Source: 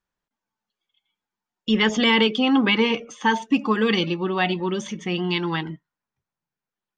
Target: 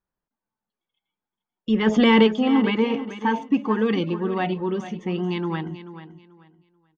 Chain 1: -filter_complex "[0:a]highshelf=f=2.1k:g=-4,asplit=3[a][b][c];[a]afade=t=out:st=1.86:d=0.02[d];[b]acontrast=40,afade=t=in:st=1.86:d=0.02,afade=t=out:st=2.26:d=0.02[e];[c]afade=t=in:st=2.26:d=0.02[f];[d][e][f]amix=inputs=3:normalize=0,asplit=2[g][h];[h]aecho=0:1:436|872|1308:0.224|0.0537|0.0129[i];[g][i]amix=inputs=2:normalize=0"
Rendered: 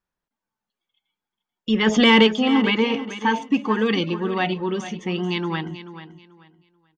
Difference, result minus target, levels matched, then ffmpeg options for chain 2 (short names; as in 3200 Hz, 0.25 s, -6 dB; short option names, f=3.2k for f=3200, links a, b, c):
4000 Hz band +6.0 dB
-filter_complex "[0:a]highshelf=f=2.1k:g=-15.5,asplit=3[a][b][c];[a]afade=t=out:st=1.86:d=0.02[d];[b]acontrast=40,afade=t=in:st=1.86:d=0.02,afade=t=out:st=2.26:d=0.02[e];[c]afade=t=in:st=2.26:d=0.02[f];[d][e][f]amix=inputs=3:normalize=0,asplit=2[g][h];[h]aecho=0:1:436|872|1308:0.224|0.0537|0.0129[i];[g][i]amix=inputs=2:normalize=0"